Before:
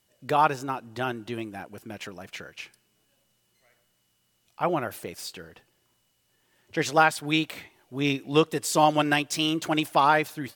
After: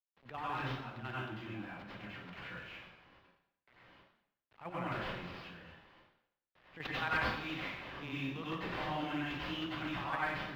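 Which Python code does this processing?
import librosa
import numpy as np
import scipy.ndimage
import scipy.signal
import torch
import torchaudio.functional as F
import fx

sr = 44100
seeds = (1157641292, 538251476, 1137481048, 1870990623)

y = fx.zero_step(x, sr, step_db=-39.5, at=(7.58, 8.08))
y = fx.transient(y, sr, attack_db=-9, sustain_db=8)
y = fx.tone_stack(y, sr, knobs='5-5-5')
y = fx.sample_hold(y, sr, seeds[0], rate_hz=9500.0, jitter_pct=20)
y = fx.level_steps(y, sr, step_db=11)
y = fx.quant_dither(y, sr, seeds[1], bits=12, dither='none')
y = fx.air_absorb(y, sr, metres=400.0)
y = fx.rev_plate(y, sr, seeds[2], rt60_s=0.7, hf_ratio=0.95, predelay_ms=80, drr_db=-7.5)
y = fx.band_squash(y, sr, depth_pct=40)
y = y * librosa.db_to_amplitude(1.5)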